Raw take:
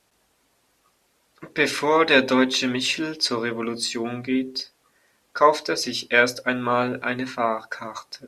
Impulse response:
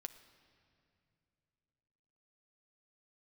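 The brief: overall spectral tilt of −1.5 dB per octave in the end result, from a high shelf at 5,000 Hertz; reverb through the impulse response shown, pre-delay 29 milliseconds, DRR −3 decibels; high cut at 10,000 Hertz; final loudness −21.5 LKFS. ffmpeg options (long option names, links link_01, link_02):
-filter_complex "[0:a]lowpass=10000,highshelf=frequency=5000:gain=-8.5,asplit=2[link_01][link_02];[1:a]atrim=start_sample=2205,adelay=29[link_03];[link_02][link_03]afir=irnorm=-1:irlink=0,volume=7.5dB[link_04];[link_01][link_04]amix=inputs=2:normalize=0,volume=-3.5dB"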